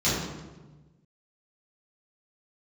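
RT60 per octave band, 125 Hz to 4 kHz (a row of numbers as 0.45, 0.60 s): 1.7, 1.5, 1.3, 1.1, 0.95, 0.80 s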